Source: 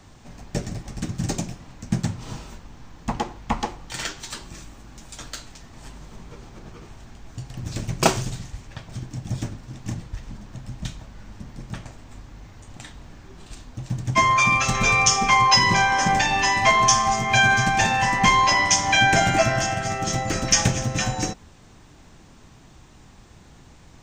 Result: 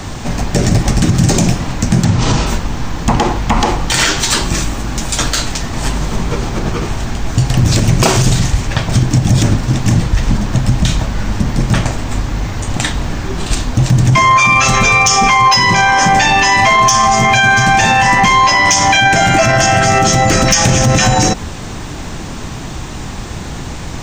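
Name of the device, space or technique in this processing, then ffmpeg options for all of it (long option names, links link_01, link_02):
loud club master: -filter_complex "[0:a]acompressor=threshold=-24dB:ratio=2.5,asoftclip=type=hard:threshold=-14.5dB,alimiter=level_in=25.5dB:limit=-1dB:release=50:level=0:latency=1,asplit=3[link_01][link_02][link_03];[link_01]afade=type=out:start_time=2.04:duration=0.02[link_04];[link_02]lowpass=frequency=7700:width=0.5412,lowpass=frequency=7700:width=1.3066,afade=type=in:start_time=2.04:duration=0.02,afade=type=out:start_time=2.45:duration=0.02[link_05];[link_03]afade=type=in:start_time=2.45:duration=0.02[link_06];[link_04][link_05][link_06]amix=inputs=3:normalize=0,volume=-1dB"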